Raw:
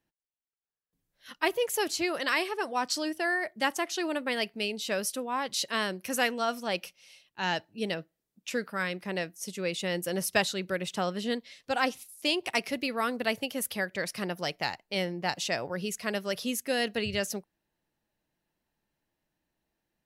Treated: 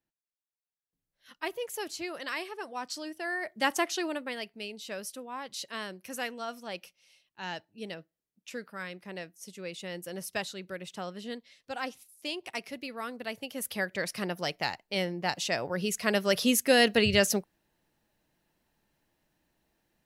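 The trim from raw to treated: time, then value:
3.16 s -7.5 dB
3.80 s +3 dB
4.42 s -8 dB
13.32 s -8 dB
13.82 s 0 dB
15.48 s 0 dB
16.44 s +7 dB

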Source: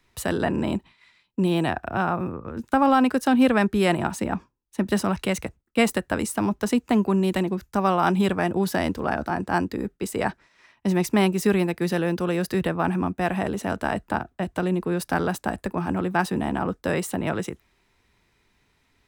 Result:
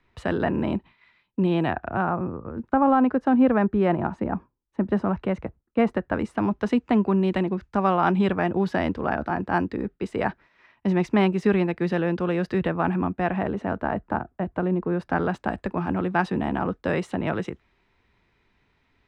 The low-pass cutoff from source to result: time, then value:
1.67 s 2.6 kHz
2.30 s 1.3 kHz
5.83 s 1.3 kHz
6.57 s 2.8 kHz
13.02 s 2.8 kHz
13.89 s 1.5 kHz
14.89 s 1.5 kHz
15.54 s 3.3 kHz

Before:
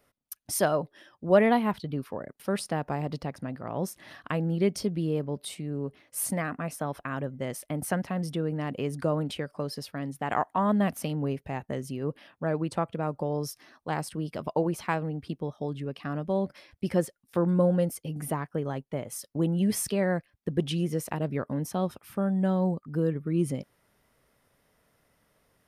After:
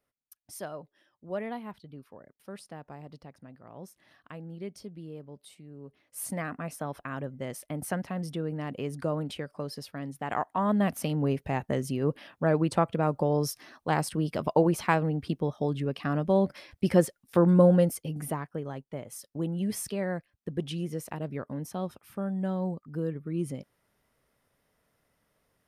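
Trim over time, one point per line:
5.76 s -14 dB
6.42 s -3 dB
10.44 s -3 dB
11.47 s +4 dB
17.73 s +4 dB
18.64 s -5 dB

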